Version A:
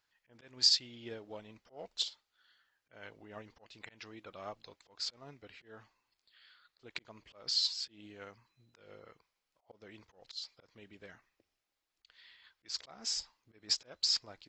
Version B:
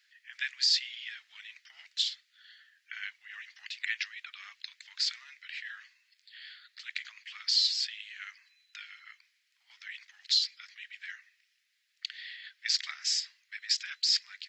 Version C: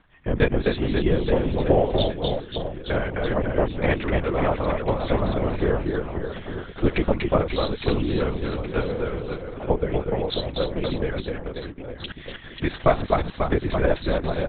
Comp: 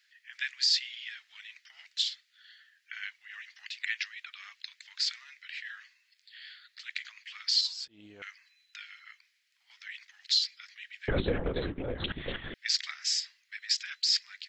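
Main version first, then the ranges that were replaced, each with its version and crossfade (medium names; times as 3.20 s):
B
7.61–8.22 s: from A
11.08–12.54 s: from C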